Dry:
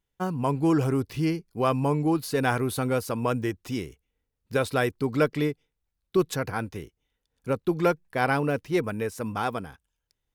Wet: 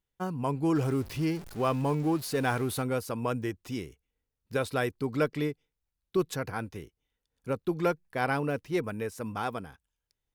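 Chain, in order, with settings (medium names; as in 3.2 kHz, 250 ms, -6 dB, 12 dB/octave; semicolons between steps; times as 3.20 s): 0.75–2.82 s: jump at every zero crossing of -35.5 dBFS; trim -4.5 dB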